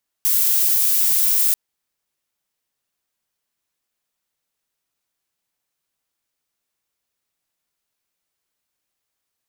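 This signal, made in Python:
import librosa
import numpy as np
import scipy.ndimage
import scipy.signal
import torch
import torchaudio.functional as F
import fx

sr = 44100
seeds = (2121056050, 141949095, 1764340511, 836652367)

y = fx.noise_colour(sr, seeds[0], length_s=1.29, colour='violet', level_db=-17.0)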